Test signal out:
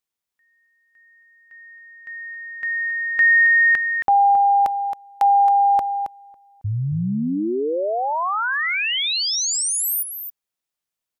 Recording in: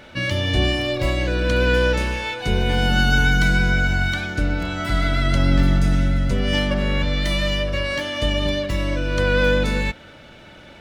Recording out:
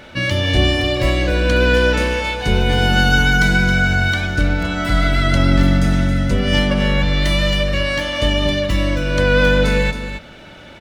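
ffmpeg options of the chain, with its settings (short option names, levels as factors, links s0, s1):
-af "aecho=1:1:271:0.355,volume=1.58"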